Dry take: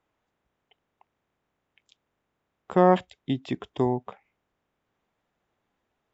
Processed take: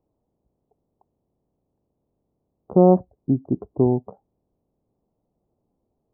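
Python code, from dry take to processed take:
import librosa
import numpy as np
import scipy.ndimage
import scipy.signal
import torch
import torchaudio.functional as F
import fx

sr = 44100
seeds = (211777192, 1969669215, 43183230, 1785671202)

y = scipy.ndimage.gaussian_filter1d(x, 13.0, mode='constant')
y = F.gain(torch.from_numpy(y), 8.0).numpy()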